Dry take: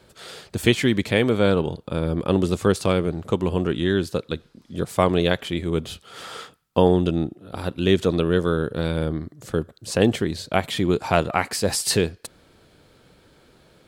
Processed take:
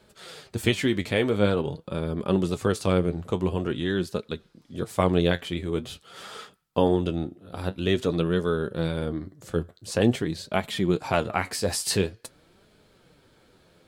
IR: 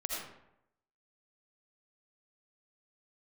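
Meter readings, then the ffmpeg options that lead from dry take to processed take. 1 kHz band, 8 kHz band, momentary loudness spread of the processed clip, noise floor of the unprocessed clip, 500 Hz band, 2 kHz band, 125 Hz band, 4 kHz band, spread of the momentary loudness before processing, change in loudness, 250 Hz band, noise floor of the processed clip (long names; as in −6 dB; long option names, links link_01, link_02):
−4.5 dB, −4.0 dB, 14 LU, −56 dBFS, −4.0 dB, −4.0 dB, −3.5 dB, −4.0 dB, 14 LU, −4.0 dB, −3.5 dB, −60 dBFS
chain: -af "flanger=delay=4.7:depth=6.9:regen=55:speed=0.47:shape=sinusoidal"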